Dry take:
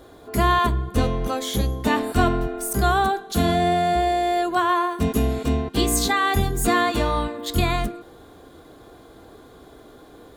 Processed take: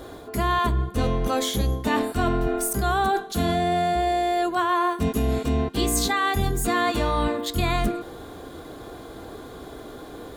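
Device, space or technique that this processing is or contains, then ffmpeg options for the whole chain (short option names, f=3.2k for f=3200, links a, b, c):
compression on the reversed sound: -af "areverse,acompressor=threshold=-27dB:ratio=6,areverse,volume=7dB"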